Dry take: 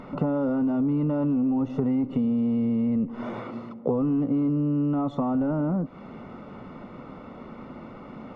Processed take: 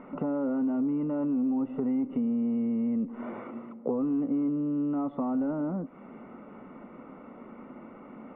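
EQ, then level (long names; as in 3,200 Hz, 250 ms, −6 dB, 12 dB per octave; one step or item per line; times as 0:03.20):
Butterworth low-pass 2,700 Hz 36 dB per octave
low shelf with overshoot 170 Hz −8 dB, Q 1.5
−5.5 dB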